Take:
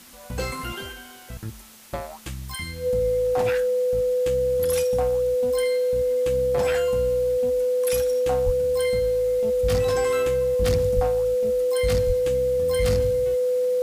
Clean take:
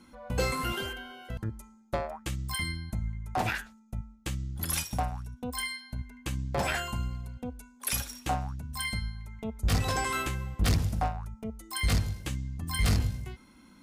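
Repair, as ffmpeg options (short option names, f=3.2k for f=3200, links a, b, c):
-filter_complex "[0:a]bandreject=f=500:w=30,asplit=3[a][b][c];[a]afade=t=out:st=8.45:d=0.02[d];[b]highpass=f=140:w=0.5412,highpass=f=140:w=1.3066,afade=t=in:st=8.45:d=0.02,afade=t=out:st=8.57:d=0.02[e];[c]afade=t=in:st=8.57:d=0.02[f];[d][e][f]amix=inputs=3:normalize=0,asplit=3[g][h][i];[g]afade=t=out:st=10.95:d=0.02[j];[h]highpass=f=140:w=0.5412,highpass=f=140:w=1.3066,afade=t=in:st=10.95:d=0.02,afade=t=out:st=11.07:d=0.02[k];[i]afade=t=in:st=11.07:d=0.02[l];[j][k][l]amix=inputs=3:normalize=0,asplit=3[m][n][o];[m]afade=t=out:st=12.06:d=0.02[p];[n]highpass=f=140:w=0.5412,highpass=f=140:w=1.3066,afade=t=in:st=12.06:d=0.02,afade=t=out:st=12.18:d=0.02[q];[o]afade=t=in:st=12.18:d=0.02[r];[p][q][r]amix=inputs=3:normalize=0,afwtdn=0.0045"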